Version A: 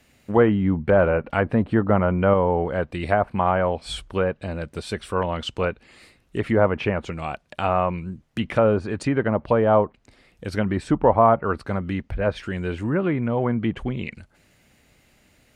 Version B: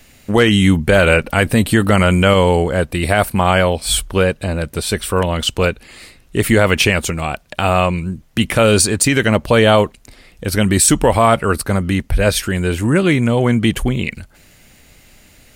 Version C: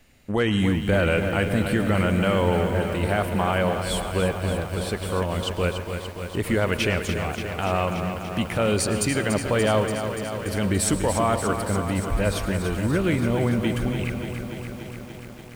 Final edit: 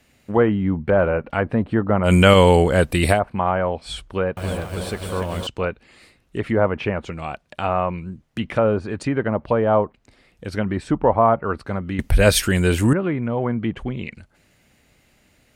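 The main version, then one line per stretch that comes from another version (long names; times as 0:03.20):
A
0:02.08–0:03.15: punch in from B, crossfade 0.10 s
0:04.37–0:05.47: punch in from C
0:11.99–0:12.93: punch in from B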